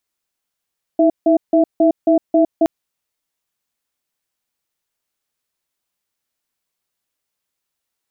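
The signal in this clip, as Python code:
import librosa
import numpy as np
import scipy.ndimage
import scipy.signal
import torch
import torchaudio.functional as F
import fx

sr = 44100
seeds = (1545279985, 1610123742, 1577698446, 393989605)

y = fx.cadence(sr, length_s=1.67, low_hz=320.0, high_hz=663.0, on_s=0.11, off_s=0.16, level_db=-12.0)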